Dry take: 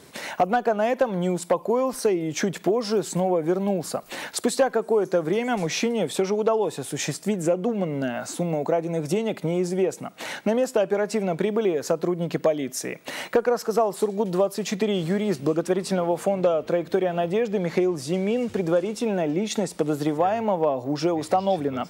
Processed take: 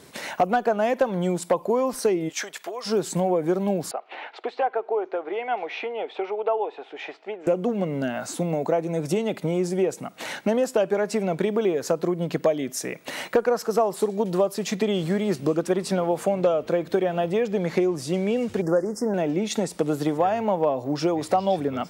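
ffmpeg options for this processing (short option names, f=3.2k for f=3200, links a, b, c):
-filter_complex "[0:a]asplit=3[a][b][c];[a]afade=t=out:st=2.28:d=0.02[d];[b]highpass=900,afade=t=in:st=2.28:d=0.02,afade=t=out:st=2.85:d=0.02[e];[c]afade=t=in:st=2.85:d=0.02[f];[d][e][f]amix=inputs=3:normalize=0,asettb=1/sr,asplit=3[g][h][i];[g]atrim=end=3.914[j];[h]atrim=start=3.91:end=7.47,asetpts=PTS-STARTPTS,afade=t=in:d=0.004:c=qsin,afade=t=out:st=3.556:d=0.004:c=qsin,highpass=f=420:w=0.5412,highpass=f=420:w=1.3066,equalizer=f=540:t=q:w=4:g=-7,equalizer=f=780:t=q:w=4:g=5,equalizer=f=1.1k:t=q:w=4:g=-4,equalizer=f=1.7k:t=q:w=4:g=-6,lowpass=f=2.8k:w=0.5412,lowpass=f=2.8k:w=1.3066[k];[i]atrim=start=7.466[l];[j][k]acrossfade=d=0.004:c1=hsin:c2=qsin[m];[m][l]acrossfade=d=0.004:c1=qsin:c2=hsin,asettb=1/sr,asplit=3[n][o][p];[n]atrim=end=18.624[q];[o]atrim=start=18.62:end=19.14,asetpts=PTS-STARTPTS,afade=t=in:d=0.004:c=qsin,afade=t=out:st=0.516:d=0.004:c=qsin,asuperstop=centerf=3100:order=20:qfactor=1.1[r];[p]atrim=start=19.136[s];[q][r]acrossfade=d=0.004:c1=hsin:c2=qsin[t];[t][s]acrossfade=d=0.004:c1=qsin:c2=hsin"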